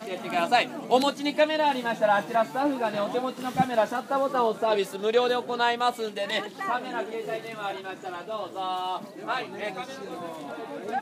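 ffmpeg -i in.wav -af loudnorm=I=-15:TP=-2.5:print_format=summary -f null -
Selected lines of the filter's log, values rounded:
Input Integrated:    -28.0 LUFS
Input True Peak:      -8.0 dBTP
Input LRA:             8.3 LU
Input Threshold:     -38.0 LUFS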